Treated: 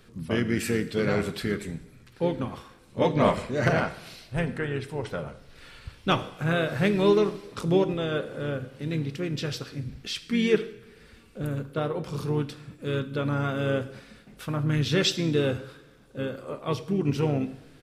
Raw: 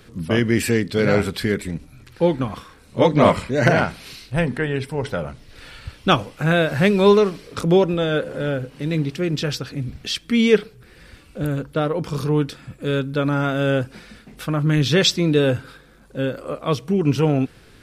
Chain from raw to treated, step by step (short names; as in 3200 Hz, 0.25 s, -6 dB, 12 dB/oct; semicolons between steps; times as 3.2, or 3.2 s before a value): two-slope reverb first 0.78 s, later 2.3 s, DRR 11 dB; harmoniser -4 st -10 dB; gain -8 dB